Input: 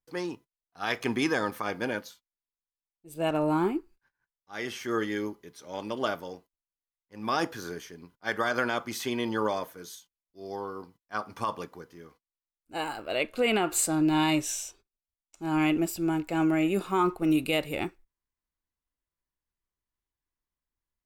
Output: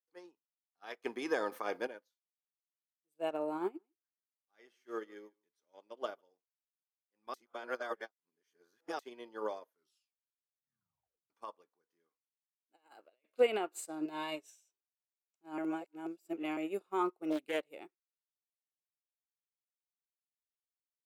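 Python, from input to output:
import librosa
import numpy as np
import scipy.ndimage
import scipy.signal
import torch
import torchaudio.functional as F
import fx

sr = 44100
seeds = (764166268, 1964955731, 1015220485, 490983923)

y = fx.env_flatten(x, sr, amount_pct=70, at=(1.04, 1.87))
y = fx.echo_single(y, sr, ms=149, db=-17.0, at=(3.78, 6.21), fade=0.02)
y = fx.over_compress(y, sr, threshold_db=-36.0, ratio=-0.5, at=(11.89, 13.38))
y = fx.comb(y, sr, ms=4.6, depth=0.59, at=(14.05, 14.5))
y = fx.doppler_dist(y, sr, depth_ms=0.46, at=(17.3, 17.7))
y = fx.edit(y, sr, fx.reverse_span(start_s=7.34, length_s=1.65),
    fx.tape_stop(start_s=9.67, length_s=1.63),
    fx.reverse_span(start_s=15.58, length_s=0.99), tone=tone)
y = scipy.signal.sosfilt(scipy.signal.butter(2, 340.0, 'highpass', fs=sr, output='sos'), y)
y = fx.dynamic_eq(y, sr, hz=470.0, q=0.75, threshold_db=-41.0, ratio=4.0, max_db=7)
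y = fx.upward_expand(y, sr, threshold_db=-37.0, expansion=2.5)
y = y * librosa.db_to_amplitude(-5.0)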